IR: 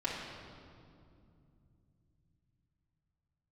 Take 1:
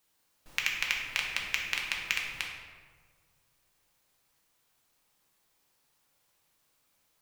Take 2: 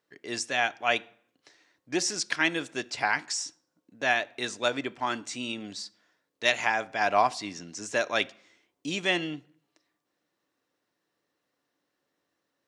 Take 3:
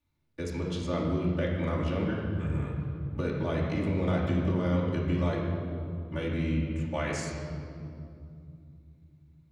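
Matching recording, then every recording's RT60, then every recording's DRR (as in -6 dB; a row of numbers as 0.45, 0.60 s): 3; 1.6 s, not exponential, 2.5 s; -1.5, 14.0, -7.5 dB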